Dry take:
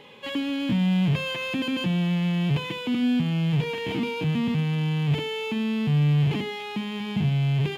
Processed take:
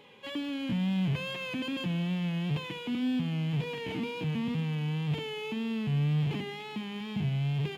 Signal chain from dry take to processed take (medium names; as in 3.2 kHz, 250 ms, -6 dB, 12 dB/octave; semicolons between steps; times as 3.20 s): wow and flutter 52 cents; thinning echo 191 ms, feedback 68%, high-pass 170 Hz, level -18 dB; trim -7 dB